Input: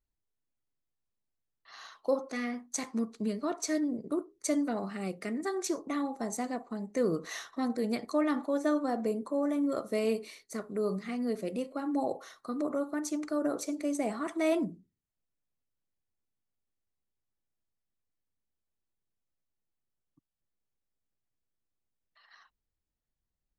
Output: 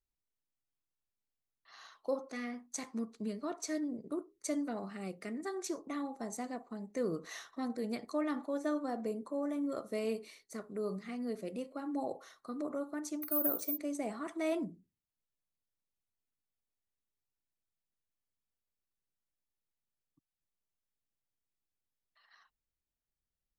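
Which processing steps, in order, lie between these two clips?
13.22–13.78 careless resampling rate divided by 3×, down filtered, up zero stuff; gain -6 dB

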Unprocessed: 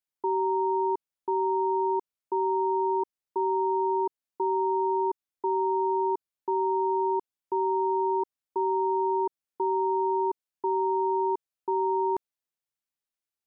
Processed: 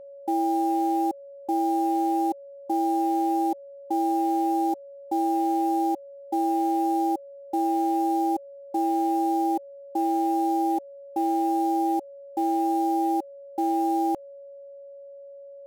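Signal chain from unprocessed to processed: companded quantiser 6-bit; whine 650 Hz -43 dBFS; varispeed -14%; gain +2 dB

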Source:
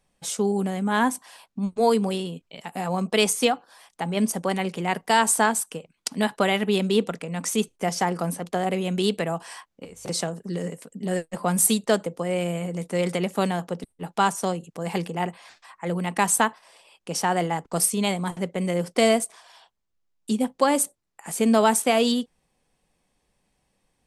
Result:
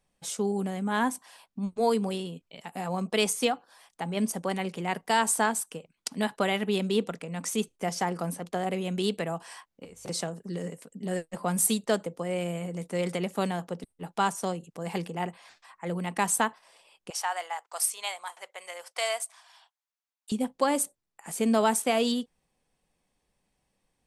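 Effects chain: 17.1–20.32 HPF 740 Hz 24 dB/oct; gain -5 dB

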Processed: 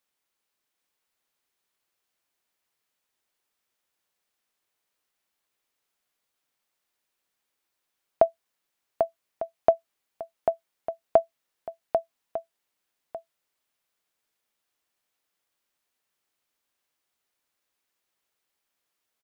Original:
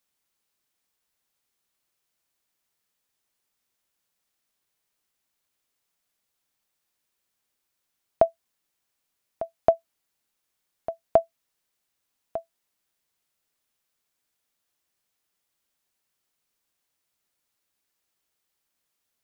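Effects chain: tone controls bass -6 dB, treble -4 dB; echo 0.793 s -5.5 dB

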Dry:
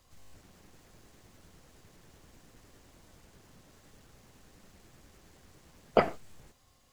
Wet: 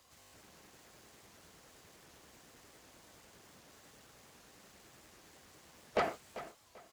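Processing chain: HPF 45 Hz; low shelf 250 Hz -12 dB; in parallel at +2.5 dB: limiter -17.5 dBFS, peak gain reduction 7 dB; on the sum: soft clip -20 dBFS, distortion -7 dB; on a send: feedback echo 0.391 s, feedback 27%, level -14 dB; on the sum: record warp 78 rpm, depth 160 cents; gain -5 dB

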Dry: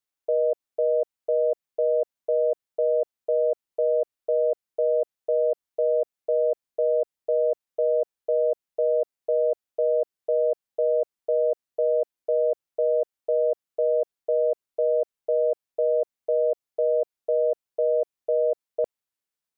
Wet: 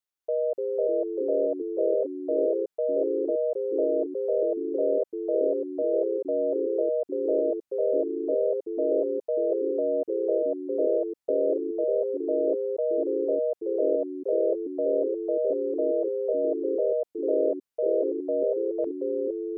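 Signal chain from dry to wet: echoes that change speed 0.242 s, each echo -3 st, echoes 3; gain -4 dB

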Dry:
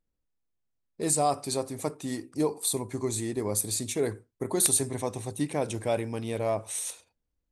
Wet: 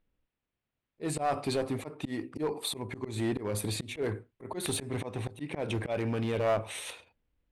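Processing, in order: resonant high shelf 4300 Hz -14 dB, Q 1.5; auto swell 0.203 s; in parallel at -1 dB: limiter -27 dBFS, peak gain reduction 10.5 dB; on the sum: one-sided clip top -25.5 dBFS

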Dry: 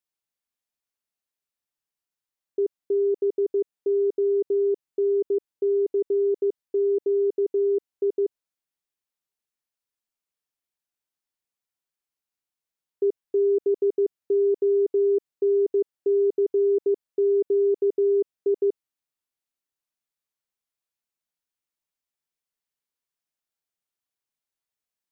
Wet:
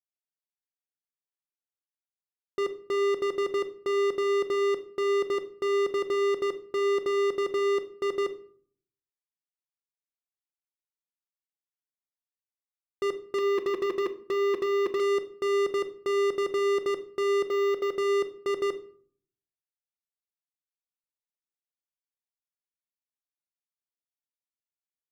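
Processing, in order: 13.38–15 comb 6 ms, depth 68%; 17.47–17.96 HPF 430 Hz 12 dB/oct; sample leveller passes 5; shoebox room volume 600 m³, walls furnished, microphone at 0.89 m; gain -8.5 dB

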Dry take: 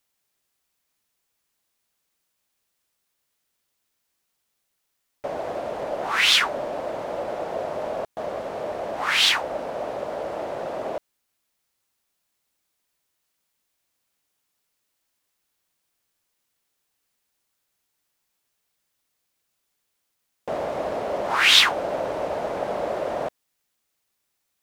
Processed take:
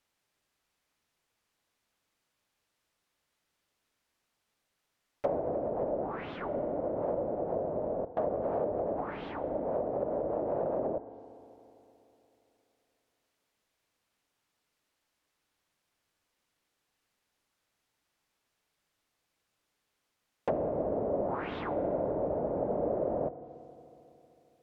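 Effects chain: LPF 3200 Hz 6 dB/oct; treble ducked by the level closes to 440 Hz, closed at -26 dBFS; FDN reverb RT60 3.3 s, high-frequency decay 0.35×, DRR 13 dB; gain +1.5 dB

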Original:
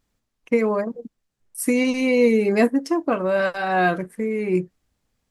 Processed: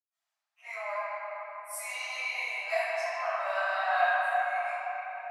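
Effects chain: steep high-pass 640 Hz 96 dB/oct; reverb RT60 4.8 s, pre-delay 90 ms; gain -8.5 dB

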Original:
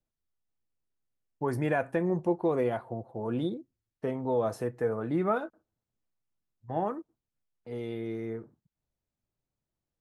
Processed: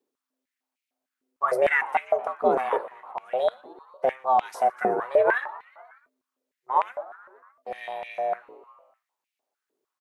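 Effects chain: ring modulator 260 Hz; frequency-shifting echo 0.12 s, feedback 63%, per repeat +120 Hz, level -22 dB; stepped high-pass 6.6 Hz 410–2400 Hz; gain +7 dB

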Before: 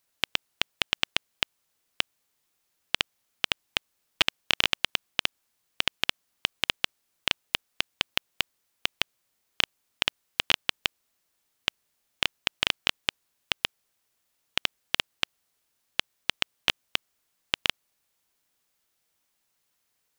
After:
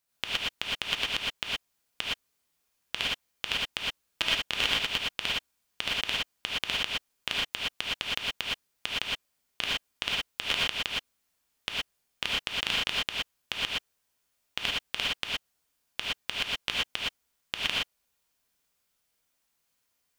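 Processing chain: non-linear reverb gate 0.14 s rising, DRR -5 dB; gain -7 dB

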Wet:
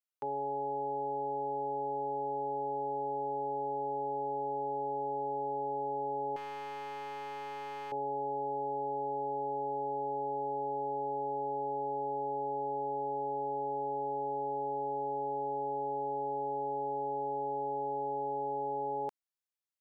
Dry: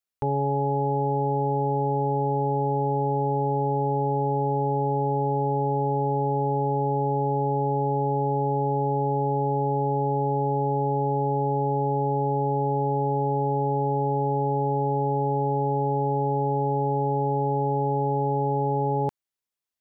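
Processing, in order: HPF 410 Hz 12 dB/oct; 6.36–7.92 hard clip -32 dBFS, distortion -15 dB; gain -8 dB

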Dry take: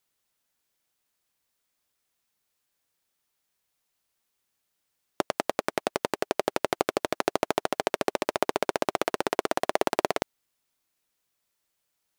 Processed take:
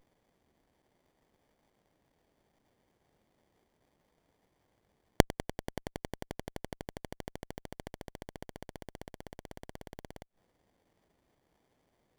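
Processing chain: flipped gate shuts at -11 dBFS, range -28 dB; pre-emphasis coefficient 0.9; running maximum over 33 samples; gain +8.5 dB

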